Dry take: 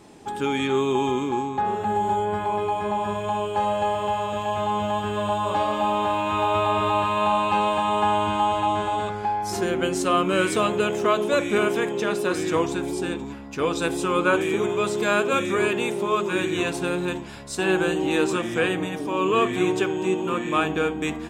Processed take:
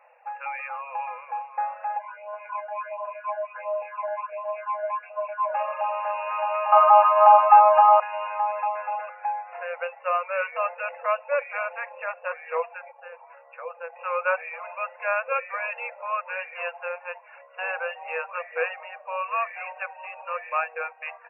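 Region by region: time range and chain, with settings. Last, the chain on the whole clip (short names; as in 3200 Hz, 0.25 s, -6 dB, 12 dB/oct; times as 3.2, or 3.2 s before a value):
1.98–5.53 ripple EQ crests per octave 1.7, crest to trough 17 dB + phaser stages 8, 1.4 Hz, lowest notch 330–1900 Hz + buzz 400 Hz, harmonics 17, -55 dBFS -1 dB/oct
6.72–8 comb 4.6 ms, depth 68% + small resonant body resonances 770/1200/3900 Hz, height 15 dB, ringing for 20 ms
12.91–13.96 LPF 2500 Hz + tilt -1.5 dB/oct + compressor 5:1, threshold -25 dBFS
whole clip: reverb removal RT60 0.61 s; FFT band-pass 480–2800 Hz; gain -2 dB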